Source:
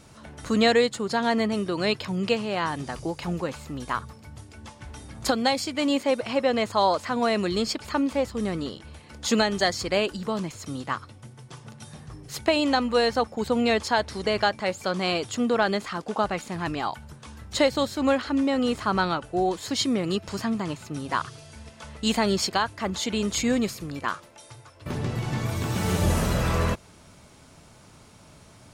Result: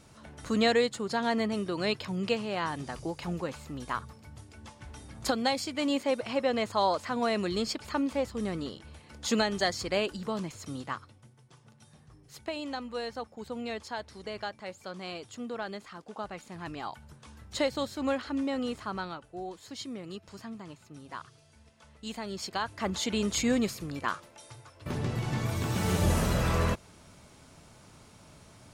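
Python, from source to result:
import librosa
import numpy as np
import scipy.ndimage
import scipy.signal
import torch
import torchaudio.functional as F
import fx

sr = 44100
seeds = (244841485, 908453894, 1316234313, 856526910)

y = fx.gain(x, sr, db=fx.line((10.8, -5.0), (11.41, -14.0), (16.12, -14.0), (17.12, -7.5), (18.55, -7.5), (19.27, -15.0), (22.29, -15.0), (22.81, -3.0)))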